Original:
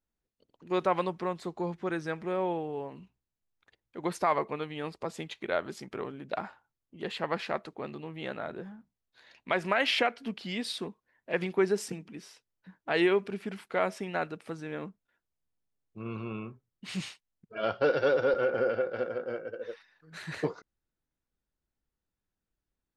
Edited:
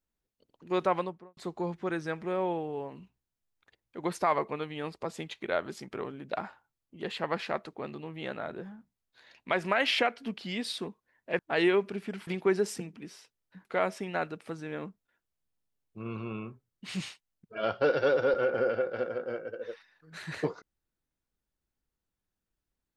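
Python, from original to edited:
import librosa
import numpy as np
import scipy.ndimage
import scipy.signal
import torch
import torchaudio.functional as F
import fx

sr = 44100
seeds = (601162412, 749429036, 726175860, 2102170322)

y = fx.studio_fade_out(x, sr, start_s=0.87, length_s=0.5)
y = fx.edit(y, sr, fx.move(start_s=12.77, length_s=0.88, to_s=11.39), tone=tone)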